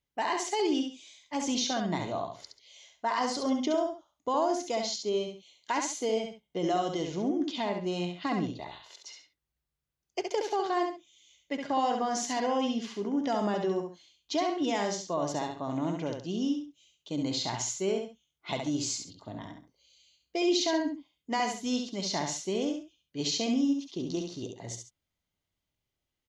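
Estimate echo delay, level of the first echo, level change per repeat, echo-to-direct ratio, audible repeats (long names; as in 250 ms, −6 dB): 68 ms, −5.0 dB, −10.5 dB, −4.5 dB, 2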